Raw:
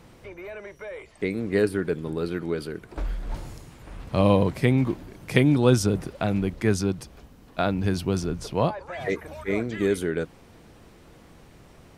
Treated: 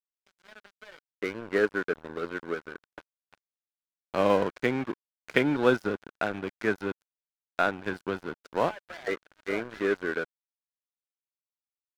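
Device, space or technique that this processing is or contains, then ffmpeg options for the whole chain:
pocket radio on a weak battery: -af "highpass=310,lowpass=3.1k,aeval=exprs='sgn(val(0))*max(abs(val(0))-0.0178,0)':c=same,equalizer=f=1.5k:t=o:w=0.3:g=8.5"

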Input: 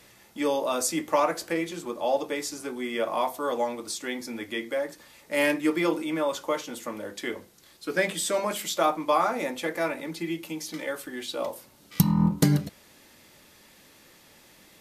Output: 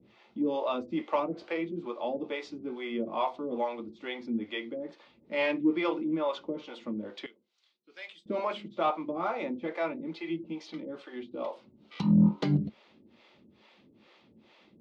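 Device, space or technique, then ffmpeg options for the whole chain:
guitar amplifier with harmonic tremolo: -filter_complex "[0:a]acrossover=split=430[a][b];[a]aeval=exprs='val(0)*(1-1/2+1/2*cos(2*PI*2.3*n/s))':c=same[c];[b]aeval=exprs='val(0)*(1-1/2-1/2*cos(2*PI*2.3*n/s))':c=same[d];[c][d]amix=inputs=2:normalize=0,asoftclip=type=tanh:threshold=-17dB,highpass=79,equalizer=f=220:t=q:w=4:g=9,equalizer=f=360:t=q:w=4:g=5,equalizer=f=1.7k:t=q:w=4:g=-9,lowpass=f=3.7k:w=0.5412,lowpass=f=3.7k:w=1.3066,asettb=1/sr,asplit=3[e][f][g];[e]atrim=end=7.264[h];[f]atrim=start=7.26:end=8.26,asetpts=PTS-STARTPTS,afade=t=in:d=0.004:c=qsin,afade=t=out:st=0.996:d=0.004:c=qsin,aderivative[i];[g]atrim=start=8.256[j];[h][i]acrossfade=d=0.004:c1=hsin:c2=qsin[k];[k][j]acrossfade=d=0.004:c1=qsin:c2=hsin"

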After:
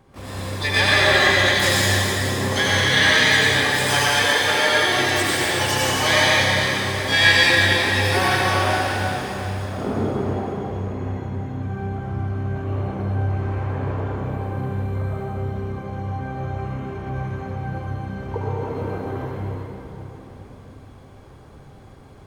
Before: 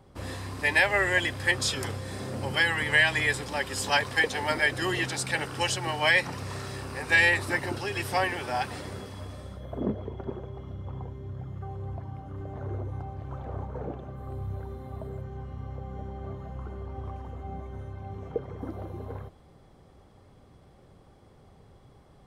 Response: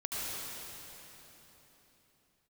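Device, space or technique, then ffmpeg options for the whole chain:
shimmer-style reverb: -filter_complex "[0:a]asplit=3[a][b][c];[a]afade=t=out:st=3.76:d=0.02[d];[b]highpass=f=290:p=1,afade=t=in:st=3.76:d=0.02,afade=t=out:st=4.87:d=0.02[e];[c]afade=t=in:st=4.87:d=0.02[f];[d][e][f]amix=inputs=3:normalize=0,asplit=2[g][h];[h]asetrate=88200,aresample=44100,atempo=0.5,volume=-5dB[i];[g][i]amix=inputs=2:normalize=0[j];[1:a]atrim=start_sample=2205[k];[j][k]afir=irnorm=-1:irlink=0,volume=3dB"

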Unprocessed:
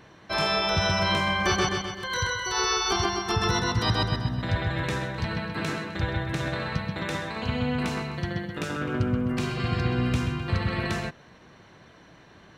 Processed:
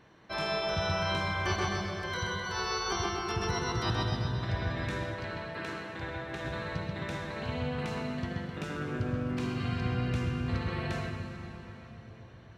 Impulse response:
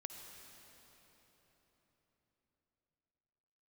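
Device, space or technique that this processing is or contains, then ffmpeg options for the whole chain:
swimming-pool hall: -filter_complex "[1:a]atrim=start_sample=2205[a];[0:a][a]afir=irnorm=-1:irlink=0,highshelf=f=5.6k:g=-5,asettb=1/sr,asplit=3[b][c][d];[b]atrim=end=5.144[e];[c]atrim=start=5.14:end=6.45,asetpts=PTS-STARTPTS,afade=t=in:d=0.004:c=qsin,afade=t=out:st=1.306:d=0.004:c=qsin,bass=f=250:g=-8,treble=f=4k:g=-3[f];[d]atrim=start=6.446[g];[e][f]acrossfade=d=0.004:c1=hsin:c2=qsin[h];[h][g]acrossfade=d=0.004:c1=qsin:c2=hsin,volume=-2.5dB"

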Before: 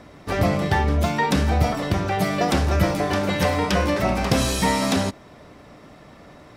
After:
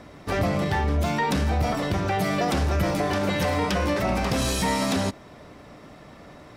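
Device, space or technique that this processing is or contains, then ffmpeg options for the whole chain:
soft clipper into limiter: -af "asoftclip=type=tanh:threshold=-11.5dB,alimiter=limit=-16.5dB:level=0:latency=1"

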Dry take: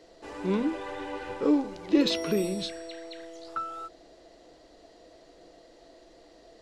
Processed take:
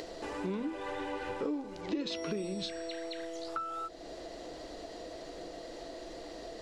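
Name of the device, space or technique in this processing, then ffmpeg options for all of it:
upward and downward compression: -filter_complex "[0:a]acompressor=mode=upward:threshold=-34dB:ratio=2.5,acompressor=threshold=-33dB:ratio=5,asettb=1/sr,asplit=3[a][b][c];[a]atrim=end=1.814[d];[b]atrim=start=1.81:end=2.91,asetpts=PTS-STARTPTS,afade=t=in:d=0.004:c=qsin,afade=t=out:st=1.096:d=0.004:c=qsin,lowpass=f=8.2k:w=0.5412,lowpass=f=8.2k:w=1.3066[e];[c]atrim=start=2.906[f];[d][e]acrossfade=d=0.004:c1=hsin:c2=qsin[g];[g][f]acrossfade=d=0.004:c1=qsin:c2=hsin"

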